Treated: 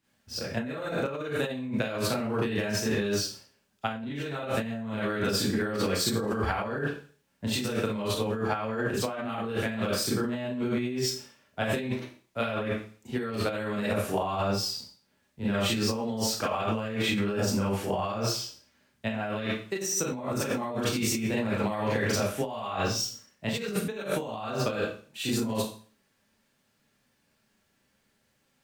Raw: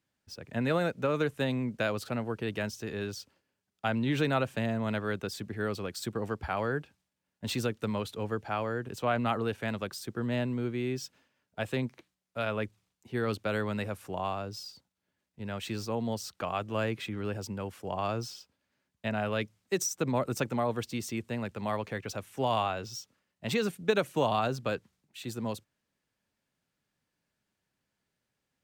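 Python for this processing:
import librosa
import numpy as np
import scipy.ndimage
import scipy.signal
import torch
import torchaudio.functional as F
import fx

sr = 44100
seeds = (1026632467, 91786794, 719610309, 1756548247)

y = fx.rev_schroeder(x, sr, rt60_s=0.42, comb_ms=28, drr_db=-9.0)
y = fx.over_compress(y, sr, threshold_db=-28.0, ratio=-1.0)
y = y * librosa.db_to_amplitude(-2.0)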